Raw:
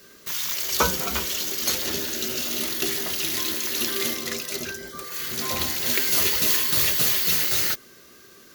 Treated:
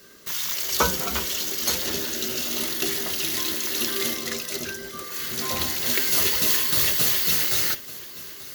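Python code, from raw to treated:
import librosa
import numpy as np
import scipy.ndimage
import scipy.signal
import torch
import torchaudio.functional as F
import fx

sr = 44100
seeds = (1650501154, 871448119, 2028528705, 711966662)

y = fx.notch(x, sr, hz=2400.0, q=24.0)
y = fx.echo_feedback(y, sr, ms=883, feedback_pct=50, wet_db=-18.0)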